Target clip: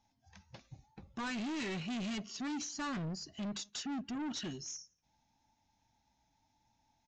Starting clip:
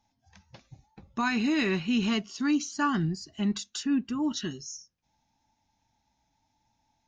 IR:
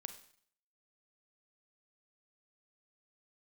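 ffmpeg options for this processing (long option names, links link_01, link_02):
-filter_complex "[0:a]aresample=16000,asoftclip=type=tanh:threshold=-34.5dB,aresample=44100,asplit=2[link_01][link_02];[link_02]adelay=169.1,volume=-29dB,highshelf=frequency=4000:gain=-3.8[link_03];[link_01][link_03]amix=inputs=2:normalize=0,volume=-2dB"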